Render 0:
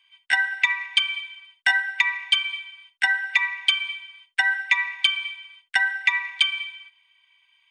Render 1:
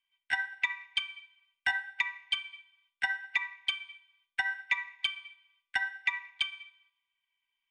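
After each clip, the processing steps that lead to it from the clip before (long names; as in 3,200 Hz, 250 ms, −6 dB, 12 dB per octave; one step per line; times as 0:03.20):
spectral tilt −2 dB per octave
tuned comb filter 90 Hz, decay 0.99 s, harmonics all, mix 60%
expander for the loud parts 1.5 to 1, over −50 dBFS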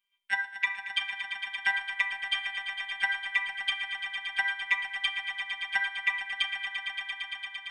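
phases set to zero 197 Hz
mains-hum notches 60/120/180/240/300/360 Hz
echo that builds up and dies away 114 ms, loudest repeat 5, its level −11 dB
level +2.5 dB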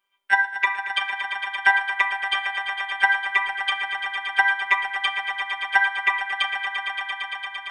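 flat-topped bell 650 Hz +11.5 dB 2.8 octaves
level +4 dB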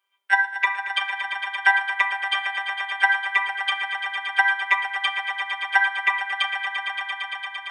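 high-pass filter 390 Hz 12 dB per octave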